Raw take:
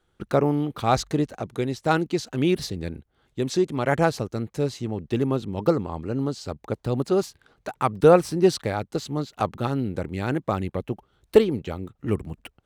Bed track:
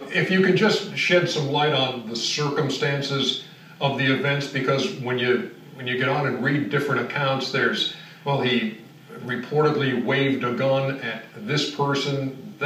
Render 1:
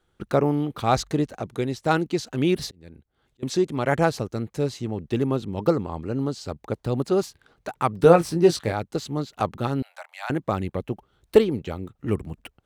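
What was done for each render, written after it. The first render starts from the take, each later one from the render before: 2.67–3.43 s: slow attack 777 ms; 7.97–8.72 s: doubling 18 ms -6.5 dB; 9.82–10.30 s: steep high-pass 650 Hz 72 dB/octave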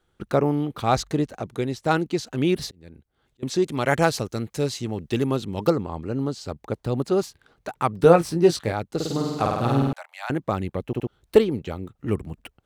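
3.62–5.70 s: treble shelf 2.1 kHz +8 dB; 8.95–9.93 s: flutter echo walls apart 8.7 m, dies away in 1.3 s; 10.86 s: stutter in place 0.07 s, 3 plays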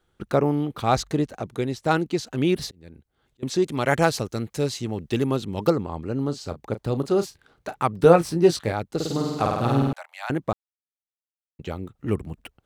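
6.25–7.77 s: doubling 35 ms -12.5 dB; 10.53–11.59 s: mute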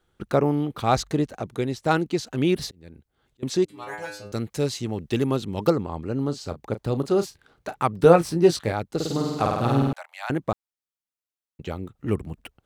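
3.65–4.32 s: inharmonic resonator 100 Hz, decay 0.63 s, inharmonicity 0.002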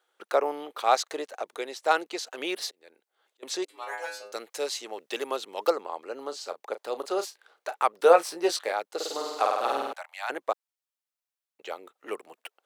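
high-pass 490 Hz 24 dB/octave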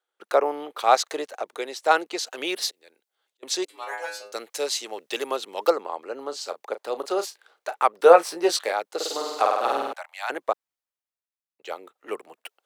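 in parallel at -1 dB: compression, threshold -31 dBFS, peak gain reduction 18 dB; on the sum: three bands expanded up and down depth 40%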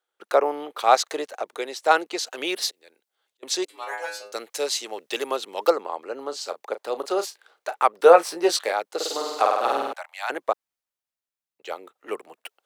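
trim +1 dB; peak limiter -2 dBFS, peak gain reduction 1.5 dB

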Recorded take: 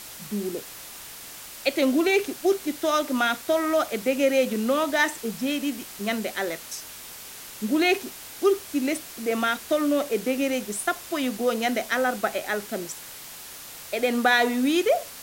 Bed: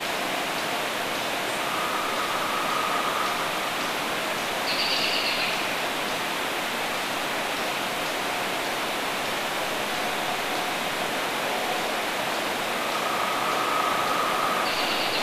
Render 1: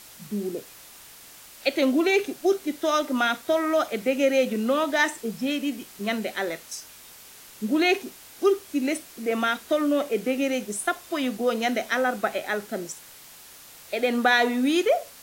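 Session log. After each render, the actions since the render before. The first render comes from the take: noise print and reduce 6 dB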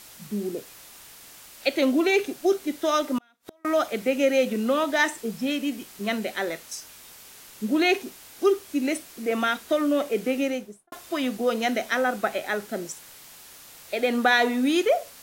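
3.18–3.65 s: inverted gate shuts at -25 dBFS, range -37 dB; 10.38–10.92 s: studio fade out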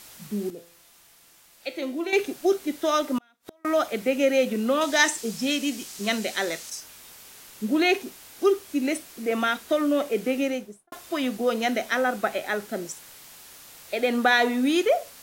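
0.50–2.13 s: feedback comb 170 Hz, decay 0.51 s, mix 70%; 4.81–6.70 s: peaking EQ 6.2 kHz +10.5 dB 1.7 oct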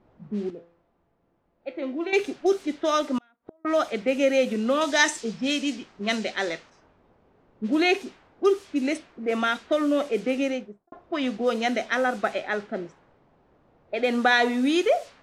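low-pass 7.6 kHz 12 dB/octave; level-controlled noise filter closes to 530 Hz, open at -20 dBFS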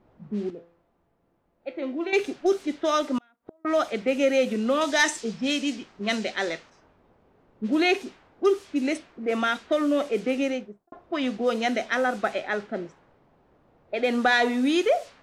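saturation -8 dBFS, distortion -26 dB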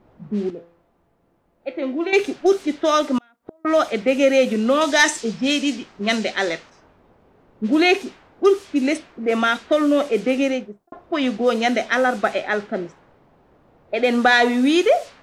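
trim +6 dB

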